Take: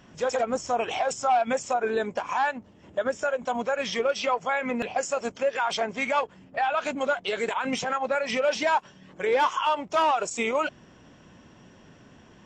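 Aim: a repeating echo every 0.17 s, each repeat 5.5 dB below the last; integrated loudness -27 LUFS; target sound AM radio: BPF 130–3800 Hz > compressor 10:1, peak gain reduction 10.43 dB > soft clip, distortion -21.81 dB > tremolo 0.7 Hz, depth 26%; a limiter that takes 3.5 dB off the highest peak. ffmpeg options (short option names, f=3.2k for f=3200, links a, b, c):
-af "alimiter=limit=-19dB:level=0:latency=1,highpass=130,lowpass=3.8k,aecho=1:1:170|340|510|680|850|1020|1190:0.531|0.281|0.149|0.079|0.0419|0.0222|0.0118,acompressor=threshold=-31dB:ratio=10,asoftclip=threshold=-26dB,tremolo=f=0.7:d=0.26,volume=10dB"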